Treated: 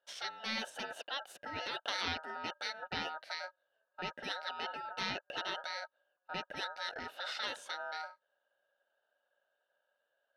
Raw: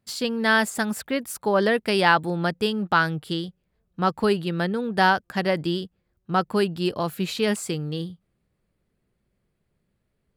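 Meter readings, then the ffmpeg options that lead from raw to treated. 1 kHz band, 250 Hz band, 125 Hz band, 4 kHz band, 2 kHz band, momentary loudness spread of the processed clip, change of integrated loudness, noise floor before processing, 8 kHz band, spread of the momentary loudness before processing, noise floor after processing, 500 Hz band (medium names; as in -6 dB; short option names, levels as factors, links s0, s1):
-16.5 dB, -26.0 dB, -26.5 dB, -9.0 dB, -15.0 dB, 6 LU, -16.0 dB, -75 dBFS, -15.5 dB, 9 LU, -84 dBFS, -22.5 dB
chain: -filter_complex "[0:a]asplit=3[s0][s1][s2];[s0]bandpass=f=530:t=q:w=8,volume=1[s3];[s1]bandpass=f=1840:t=q:w=8,volume=0.501[s4];[s2]bandpass=f=2480:t=q:w=8,volume=0.355[s5];[s3][s4][s5]amix=inputs=3:normalize=0,afftfilt=real='re*lt(hypot(re,im),0.0398)':imag='im*lt(hypot(re,im),0.0398)':win_size=1024:overlap=0.75,aeval=exprs='val(0)*sin(2*PI*1100*n/s)':c=same,volume=3.55"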